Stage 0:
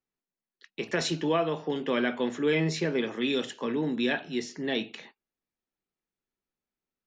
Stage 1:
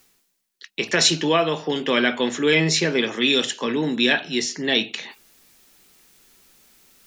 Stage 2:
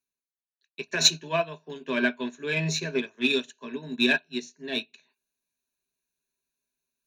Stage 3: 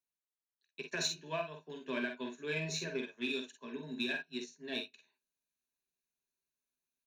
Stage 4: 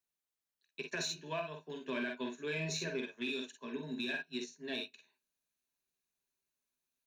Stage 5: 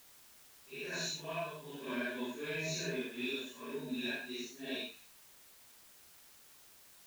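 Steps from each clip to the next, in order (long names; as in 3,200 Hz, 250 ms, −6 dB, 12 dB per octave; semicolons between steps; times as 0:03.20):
high-shelf EQ 2,200 Hz +12 dB; reversed playback; upward compression, threshold −41 dBFS; reversed playback; level +5.5 dB
EQ curve with evenly spaced ripples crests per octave 1.5, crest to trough 13 dB; in parallel at −8 dB: soft clipping −15 dBFS, distortion −11 dB; on the sum: expander for the loud parts 2.5 to 1, over −29 dBFS; level −5 dB
downward compressor 6 to 1, threshold −25 dBFS, peak gain reduction 11.5 dB; ambience of single reflections 47 ms −6.5 dB, 58 ms −11 dB; level −8.5 dB
brickwall limiter −30.5 dBFS, peak gain reduction 7.5 dB; level +2 dB
random phases in long frames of 200 ms; bit-depth reduction 10 bits, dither triangular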